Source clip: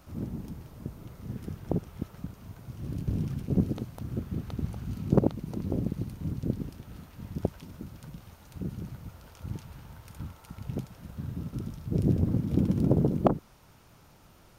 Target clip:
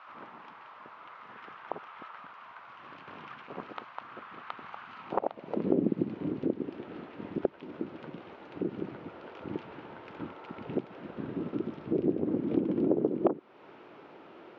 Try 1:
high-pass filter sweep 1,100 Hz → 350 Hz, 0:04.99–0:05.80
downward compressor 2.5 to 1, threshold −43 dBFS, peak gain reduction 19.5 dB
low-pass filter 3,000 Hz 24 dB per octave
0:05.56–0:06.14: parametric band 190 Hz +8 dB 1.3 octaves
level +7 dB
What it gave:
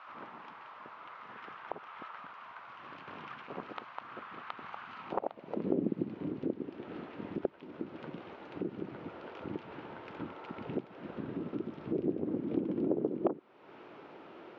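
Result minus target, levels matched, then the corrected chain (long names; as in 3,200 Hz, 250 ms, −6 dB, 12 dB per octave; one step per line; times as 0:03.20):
downward compressor: peak gain reduction +4.5 dB
high-pass filter sweep 1,100 Hz → 350 Hz, 0:04.99–0:05.80
downward compressor 2.5 to 1, threshold −35.5 dBFS, peak gain reduction 15 dB
low-pass filter 3,000 Hz 24 dB per octave
0:05.56–0:06.14: parametric band 190 Hz +8 dB 1.3 octaves
level +7 dB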